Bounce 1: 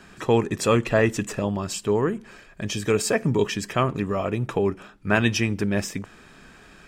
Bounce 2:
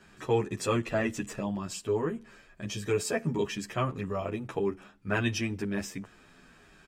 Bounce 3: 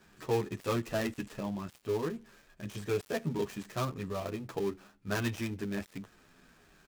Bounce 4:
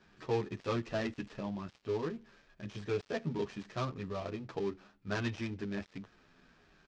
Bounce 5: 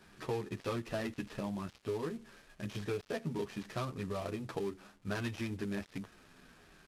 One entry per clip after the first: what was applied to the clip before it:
endless flanger 10.2 ms -0.89 Hz; gain -5 dB
switching dead time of 0.13 ms; gain -3.5 dB
LPF 5600 Hz 24 dB/oct; gain -2.5 dB
CVSD 64 kbps; compressor 3:1, threshold -39 dBFS, peak gain reduction 9 dB; gain +4 dB

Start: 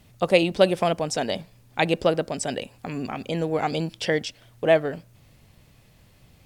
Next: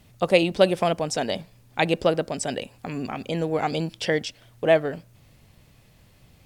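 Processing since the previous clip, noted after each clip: nothing audible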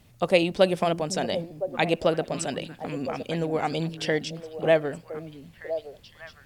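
delay with a stepping band-pass 0.507 s, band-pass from 210 Hz, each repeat 1.4 oct, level -6.5 dB; gain -2 dB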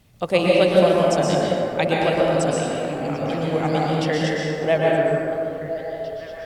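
plate-style reverb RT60 2.7 s, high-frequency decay 0.4×, pre-delay 0.105 s, DRR -4.5 dB

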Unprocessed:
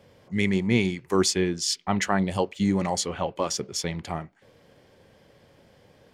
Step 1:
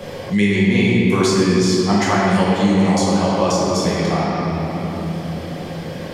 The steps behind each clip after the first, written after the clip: shoebox room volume 130 m³, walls hard, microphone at 0.98 m; three-band squash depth 70%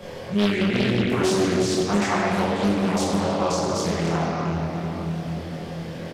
doubler 24 ms -2 dB; Doppler distortion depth 0.74 ms; gain -7.5 dB

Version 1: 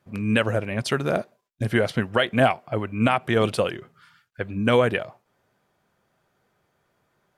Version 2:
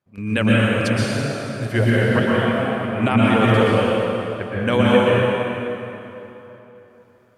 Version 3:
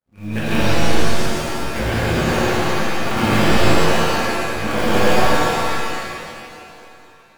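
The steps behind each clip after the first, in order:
step gate "..xxxx.xxx.x..." 171 bpm -12 dB; plate-style reverb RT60 3.3 s, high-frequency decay 0.75×, pre-delay 0.105 s, DRR -7 dB; gain -1 dB
cycle switcher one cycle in 2, muted; shimmer reverb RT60 1.4 s, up +7 st, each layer -2 dB, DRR -6.5 dB; gain -7.5 dB

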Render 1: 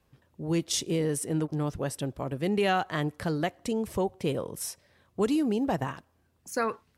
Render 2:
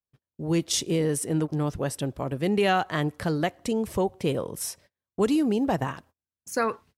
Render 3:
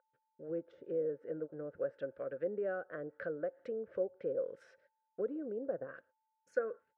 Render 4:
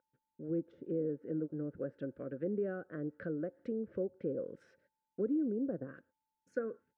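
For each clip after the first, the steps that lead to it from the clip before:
gate -54 dBFS, range -34 dB; gain +3 dB
treble ducked by the level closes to 720 Hz, closed at -22.5 dBFS; whine 880 Hz -49 dBFS; double band-pass 890 Hz, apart 1.5 oct; gain -1 dB
resonant low shelf 400 Hz +12 dB, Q 1.5; gain -3.5 dB

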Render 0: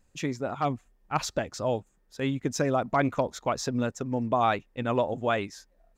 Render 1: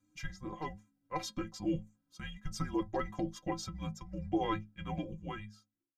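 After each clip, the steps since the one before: ending faded out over 1.21 s; metallic resonator 97 Hz, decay 0.33 s, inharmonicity 0.03; frequency shift -310 Hz; gain +1.5 dB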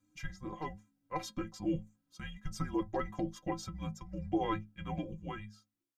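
dynamic EQ 4700 Hz, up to -4 dB, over -55 dBFS, Q 0.9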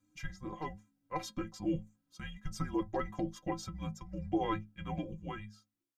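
short-mantissa float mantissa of 8-bit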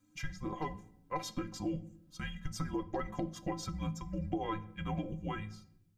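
compressor 4:1, threshold -38 dBFS, peak gain reduction 10 dB; on a send at -13.5 dB: reverb RT60 0.75 s, pre-delay 7 ms; on the sum: gain +4.5 dB

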